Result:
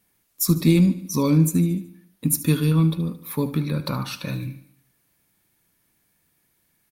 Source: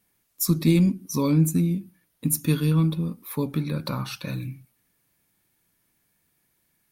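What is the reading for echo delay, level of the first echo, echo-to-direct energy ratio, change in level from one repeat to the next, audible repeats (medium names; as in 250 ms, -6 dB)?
74 ms, -15.0 dB, -13.5 dB, -6.0 dB, 4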